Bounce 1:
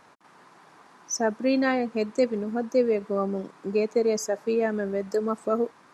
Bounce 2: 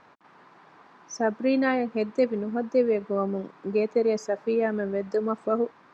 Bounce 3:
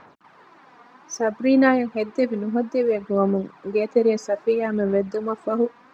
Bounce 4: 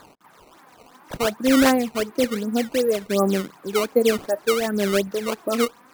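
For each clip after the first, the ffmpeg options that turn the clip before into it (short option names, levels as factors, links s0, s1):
-af "lowpass=3700"
-af "aphaser=in_gain=1:out_gain=1:delay=4.2:decay=0.51:speed=0.61:type=sinusoidal,volume=1.26"
-af "acrusher=samples=15:mix=1:aa=0.000001:lfo=1:lforange=24:lforate=2.7"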